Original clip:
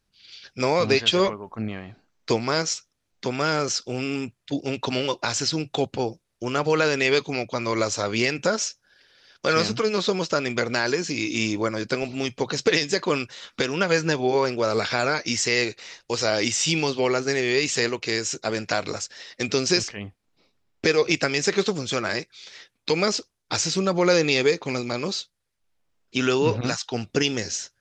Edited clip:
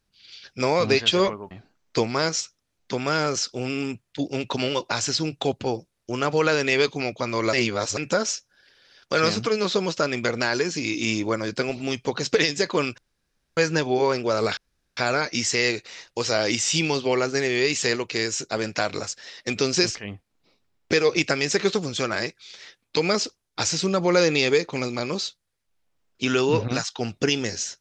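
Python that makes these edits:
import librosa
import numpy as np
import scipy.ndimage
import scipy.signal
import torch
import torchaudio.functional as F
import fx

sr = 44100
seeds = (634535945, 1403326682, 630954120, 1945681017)

y = fx.edit(x, sr, fx.cut(start_s=1.51, length_s=0.33),
    fx.reverse_span(start_s=7.86, length_s=0.44),
    fx.room_tone_fill(start_s=13.31, length_s=0.59),
    fx.insert_room_tone(at_s=14.9, length_s=0.4), tone=tone)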